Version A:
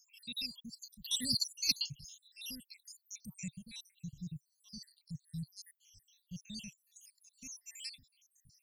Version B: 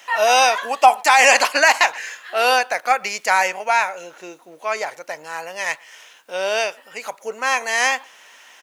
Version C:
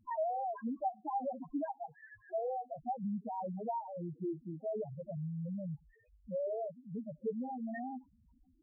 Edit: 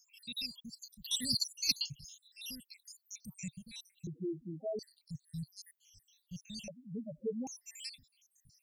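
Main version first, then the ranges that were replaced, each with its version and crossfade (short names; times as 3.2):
A
4.07–4.79 from C
6.68–7.47 from C
not used: B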